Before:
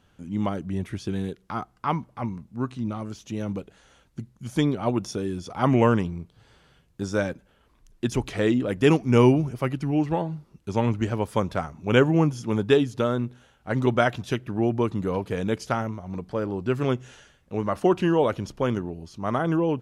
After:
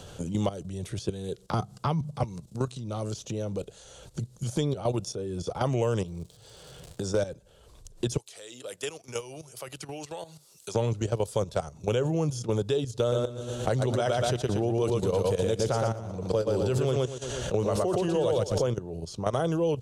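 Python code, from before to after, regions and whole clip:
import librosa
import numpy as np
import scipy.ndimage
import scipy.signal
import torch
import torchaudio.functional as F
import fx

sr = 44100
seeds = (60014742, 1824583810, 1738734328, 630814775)

y = fx.chain(x, sr, fx.peak_eq(hz=150.0, db=13.5, octaves=1.1),
    fx.hum_notches(base_hz=50, count=4),
    fx.band_squash(depth_pct=40), at=(1.53, 2.23))
y = fx.overload_stage(y, sr, gain_db=16.0, at=(6.05, 7.27), fade=0.02)
y = fx.low_shelf(y, sr, hz=64.0, db=-4.5, at=(6.05, 7.27), fade=0.02)
y = fx.dmg_crackle(y, sr, seeds[0], per_s=200.0, level_db=-52.0, at=(6.05, 7.27), fade=0.02)
y = fx.chain(y, sr, fx.differentiator(),
    fx.band_squash(depth_pct=40), at=(8.17, 10.75))
y = fx.chain(y, sr, fx.echo_feedback(ms=117, feedback_pct=33, wet_db=-3),
    fx.pre_swell(db_per_s=42.0), at=(13.0, 18.69))
y = fx.level_steps(y, sr, step_db=13)
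y = fx.graphic_eq(y, sr, hz=(125, 250, 500, 1000, 2000, 4000, 8000), db=(4, -10, 8, -4, -9, 6, 11))
y = fx.band_squash(y, sr, depth_pct=70)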